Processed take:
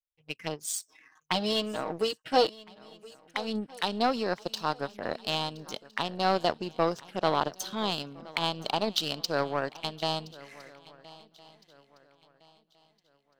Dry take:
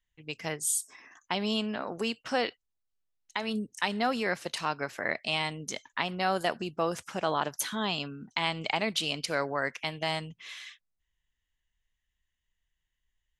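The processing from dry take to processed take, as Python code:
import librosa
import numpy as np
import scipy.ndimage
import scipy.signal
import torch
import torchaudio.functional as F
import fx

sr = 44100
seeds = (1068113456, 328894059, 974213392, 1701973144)

p1 = fx.low_shelf(x, sr, hz=180.0, db=-5.5)
p2 = fx.env_phaser(p1, sr, low_hz=250.0, high_hz=2100.0, full_db=-32.0)
p3 = fx.comb(p2, sr, ms=6.4, depth=0.86, at=(0.67, 2.47))
p4 = fx.power_curve(p3, sr, exponent=1.4)
p5 = fx.peak_eq(p4, sr, hz=6900.0, db=-5.0, octaves=0.37)
p6 = p5 + fx.echo_swing(p5, sr, ms=1361, ratio=3, feedback_pct=31, wet_db=-20.5, dry=0)
y = F.gain(torch.from_numpy(p6), 8.0).numpy()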